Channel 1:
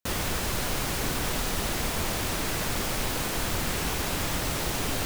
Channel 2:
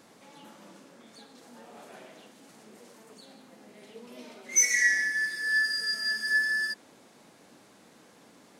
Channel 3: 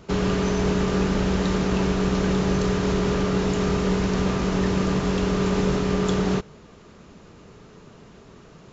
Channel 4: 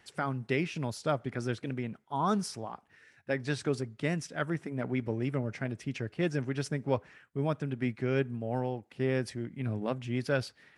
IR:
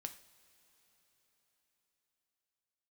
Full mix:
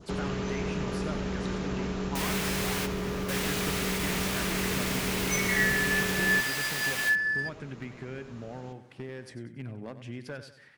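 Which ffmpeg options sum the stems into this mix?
-filter_complex "[0:a]highpass=f=1.2k:p=1,adelay=2100,volume=-2.5dB[a];[1:a]aemphasis=mode=reproduction:type=75kf,aecho=1:1:6.4:0.65,adelay=750,volume=-5.5dB[b];[2:a]acompressor=threshold=-32dB:ratio=2,volume=-3dB[c];[3:a]adynamicequalizer=threshold=0.00355:dfrequency=1700:dqfactor=3.1:tfrequency=1700:tqfactor=3.1:attack=5:release=100:ratio=0.375:range=2.5:mode=boostabove:tftype=bell,acompressor=threshold=-35dB:ratio=12,asoftclip=type=hard:threshold=-30.5dB,volume=-0.5dB,asplit=3[d][e][f];[e]volume=-12dB[g];[f]apad=whole_len=315428[h];[a][h]sidechaingate=range=-15dB:threshold=-54dB:ratio=16:detection=peak[i];[g]aecho=0:1:94|188|282|376|470|564:1|0.41|0.168|0.0689|0.0283|0.0116[j];[i][b][c][d][j]amix=inputs=5:normalize=0,adynamicequalizer=threshold=0.00708:dfrequency=2200:dqfactor=1.3:tfrequency=2200:tqfactor=1.3:attack=5:release=100:ratio=0.375:range=2.5:mode=boostabove:tftype=bell"

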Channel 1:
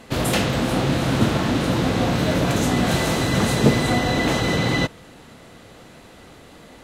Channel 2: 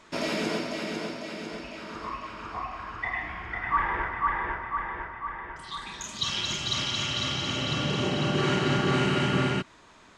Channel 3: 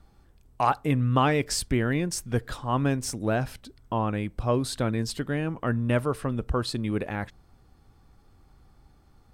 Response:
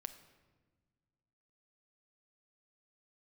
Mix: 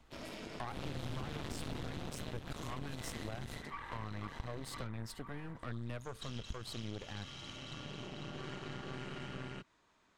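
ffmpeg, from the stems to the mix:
-filter_complex "[0:a]equalizer=f=3.3k:w=2:g=5.5,acompressor=threshold=-20dB:ratio=6,tremolo=f=150:d=0.889,volume=-4dB,afade=t=in:st=0.67:d=0.24:silence=0.237137,afade=t=out:st=1.83:d=0.51:silence=0.334965,afade=t=out:st=3.34:d=0.52:silence=0.446684[a];[1:a]volume=-17.5dB[b];[2:a]volume=-10dB,asplit=2[c][d];[d]apad=whole_len=301488[e];[a][e]sidechaingate=range=-9dB:threshold=-54dB:ratio=16:detection=peak[f];[f][b][c]amix=inputs=3:normalize=0,acrossover=split=130[g][h];[h]acompressor=threshold=-48dB:ratio=1.5[i];[g][i]amix=inputs=2:normalize=0,aeval=exprs='0.0891*(cos(1*acos(clip(val(0)/0.0891,-1,1)))-cos(1*PI/2))+0.0141*(cos(8*acos(clip(val(0)/0.0891,-1,1)))-cos(8*PI/2))':c=same,acompressor=threshold=-37dB:ratio=6"

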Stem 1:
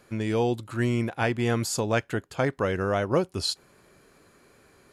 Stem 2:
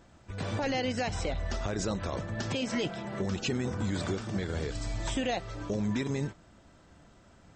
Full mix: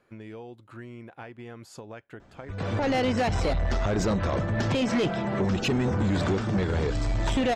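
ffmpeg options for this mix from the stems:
-filter_complex "[0:a]bass=f=250:g=-3,treble=f=4k:g=-12,acompressor=threshold=-31dB:ratio=6,volume=-8dB[a];[1:a]lowpass=f=2.4k:p=1,dynaudnorm=f=410:g=3:m=8dB,asoftclip=type=tanh:threshold=-23dB,adelay=2200,volume=3dB[b];[a][b]amix=inputs=2:normalize=0"

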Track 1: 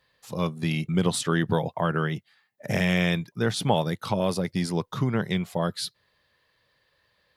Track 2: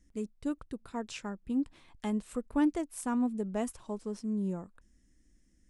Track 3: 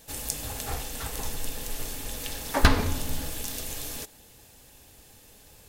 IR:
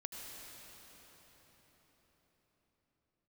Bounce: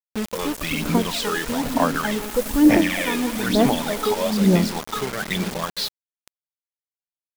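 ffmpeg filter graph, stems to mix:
-filter_complex "[0:a]highpass=f=840:p=1,volume=0dB,asplit=3[a][b][c];[b]volume=-12dB[d];[1:a]volume=2dB,asplit=2[e][f];[f]volume=-3dB[g];[2:a]aderivative,adelay=250,volume=-10dB[h];[c]apad=whole_len=261586[i];[h][i]sidechaincompress=threshold=-40dB:ratio=8:attack=6.6:release=299[j];[a][e]amix=inputs=2:normalize=0,lowpass=5.4k,alimiter=limit=-23.5dB:level=0:latency=1:release=78,volume=0dB[k];[3:a]atrim=start_sample=2205[l];[d][g]amix=inputs=2:normalize=0[m];[m][l]afir=irnorm=-1:irlink=0[n];[j][k][n]amix=inputs=3:normalize=0,acontrast=44,aphaser=in_gain=1:out_gain=1:delay=2.4:decay=0.66:speed=1.1:type=sinusoidal,acrusher=bits=4:mix=0:aa=0.000001"

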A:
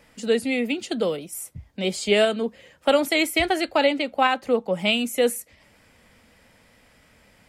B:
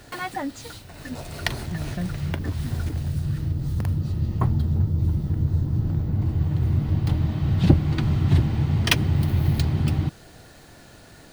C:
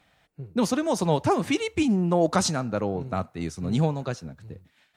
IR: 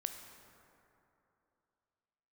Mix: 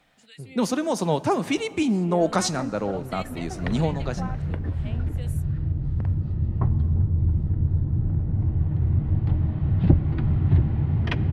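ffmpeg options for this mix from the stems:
-filter_complex "[0:a]acrossover=split=1600[a][b];[a]aeval=exprs='val(0)*(1-1/2+1/2*cos(2*PI*1.4*n/s))':c=same[c];[b]aeval=exprs='val(0)*(1-1/2-1/2*cos(2*PI*1.4*n/s))':c=same[d];[c][d]amix=inputs=2:normalize=0,volume=-16dB[e];[1:a]lowpass=1.8k,equalizer=f=1.2k:t=o:w=0.77:g=-2.5,adelay=2200,volume=-6dB,asplit=2[f][g];[g]volume=-8.5dB[h];[2:a]highpass=150,volume=-2.5dB,asplit=2[i][j];[j]volume=-8dB[k];[3:a]atrim=start_sample=2205[l];[h][k]amix=inputs=2:normalize=0[m];[m][l]afir=irnorm=-1:irlink=0[n];[e][f][i][n]amix=inputs=4:normalize=0,lowshelf=f=70:g=10.5"

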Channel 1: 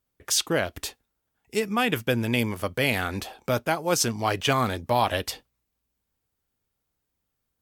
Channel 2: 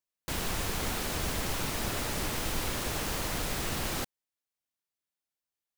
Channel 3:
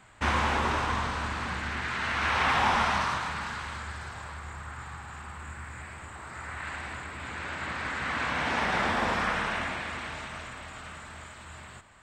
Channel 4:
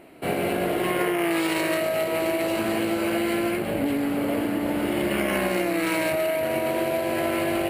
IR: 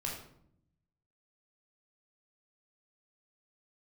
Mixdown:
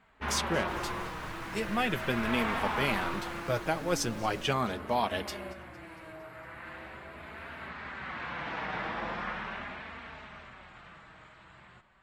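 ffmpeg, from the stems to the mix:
-filter_complex "[0:a]volume=-2.5dB,asplit=3[a][b][c];[b]volume=-21dB[d];[1:a]adelay=400,volume=-13.5dB,asplit=2[e][f];[f]volume=-7dB[g];[2:a]lowpass=4.3k,volume=-4dB[h];[3:a]volume=-18dB,asplit=2[i][j];[j]volume=-6dB[k];[c]apad=whole_len=339557[l];[i][l]sidechaingate=range=-33dB:threshold=-58dB:ratio=16:detection=peak[m];[4:a]atrim=start_sample=2205[n];[g][k]amix=inputs=2:normalize=0[o];[o][n]afir=irnorm=-1:irlink=0[p];[d]aecho=0:1:229|458|687|916|1145|1374|1603|1832|2061:1|0.58|0.336|0.195|0.113|0.0656|0.0381|0.0221|0.0128[q];[a][e][h][m][p][q]amix=inputs=6:normalize=0,highshelf=f=8k:g=-9,flanger=delay=4.3:depth=2.2:regen=-32:speed=0.4:shape=triangular"

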